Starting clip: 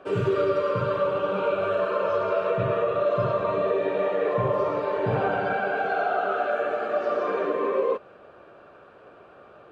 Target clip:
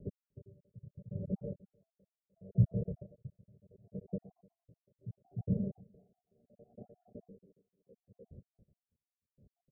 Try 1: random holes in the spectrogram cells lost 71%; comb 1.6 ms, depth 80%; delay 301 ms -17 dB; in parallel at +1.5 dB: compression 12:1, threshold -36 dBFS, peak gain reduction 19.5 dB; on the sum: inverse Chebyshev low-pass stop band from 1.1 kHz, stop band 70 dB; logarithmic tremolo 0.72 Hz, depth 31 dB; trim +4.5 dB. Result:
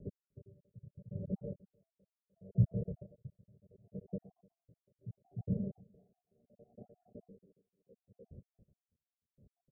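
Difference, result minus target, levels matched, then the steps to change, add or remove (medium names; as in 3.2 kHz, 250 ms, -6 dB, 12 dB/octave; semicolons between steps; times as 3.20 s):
compression: peak gain reduction +7.5 dB
change: compression 12:1, threshold -28 dBFS, peak gain reduction 12 dB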